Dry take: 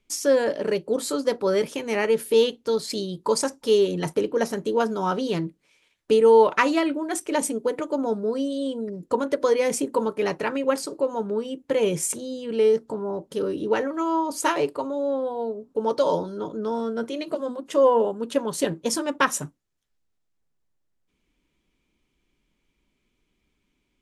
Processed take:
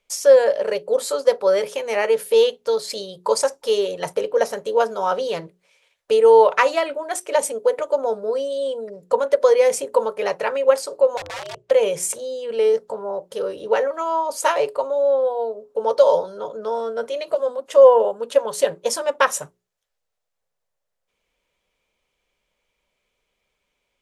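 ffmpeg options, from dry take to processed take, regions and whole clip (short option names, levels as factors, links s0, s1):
-filter_complex "[0:a]asettb=1/sr,asplit=3[s0][s1][s2];[s0]atrim=end=11.174[s3];[s1]atrim=start=11.17:end=11.71,asetpts=PTS-STARTPTS,afade=t=in:d=0.004:c=qsin,afade=t=out:st=0.536:d=0.004:c=qsin,aeval=exprs='(mod(20*val(0)+1,2)-1)/20':c=same,aeval=exprs='val(0)*sin(2*PI*110*n/s)':c=same,lowpass=7100[s4];[s2]atrim=start=11.706[s5];[s3][s4]acrossfade=d=0.004:c1=hsin:c2=qsin[s6];[s6][s5]acrossfade=d=0.004:c1=qsin:c2=hsin,lowshelf=f=400:t=q:w=3:g=-9,bandreject=f=60:t=h:w=6,bandreject=f=120:t=h:w=6,bandreject=f=180:t=h:w=6,bandreject=f=240:t=h:w=6,bandreject=f=300:t=h:w=6,bandreject=f=360:t=h:w=6,bandreject=f=420:t=h:w=6,volume=1.26"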